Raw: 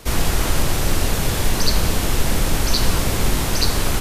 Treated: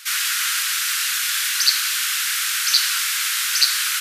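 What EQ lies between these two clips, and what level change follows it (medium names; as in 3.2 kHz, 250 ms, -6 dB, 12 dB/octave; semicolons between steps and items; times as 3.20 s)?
elliptic high-pass 1.4 kHz, stop band 60 dB; +6.0 dB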